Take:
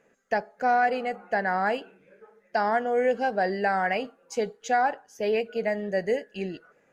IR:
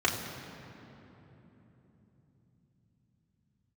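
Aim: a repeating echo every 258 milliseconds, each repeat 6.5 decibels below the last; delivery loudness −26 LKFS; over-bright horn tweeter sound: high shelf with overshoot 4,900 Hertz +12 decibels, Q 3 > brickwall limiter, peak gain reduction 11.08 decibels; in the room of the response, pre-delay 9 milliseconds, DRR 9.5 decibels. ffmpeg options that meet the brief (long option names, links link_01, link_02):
-filter_complex "[0:a]aecho=1:1:258|516|774|1032|1290|1548:0.473|0.222|0.105|0.0491|0.0231|0.0109,asplit=2[link_01][link_02];[1:a]atrim=start_sample=2205,adelay=9[link_03];[link_02][link_03]afir=irnorm=-1:irlink=0,volume=-21.5dB[link_04];[link_01][link_04]amix=inputs=2:normalize=0,highshelf=frequency=4900:width_type=q:width=3:gain=12,volume=4.5dB,alimiter=limit=-17dB:level=0:latency=1"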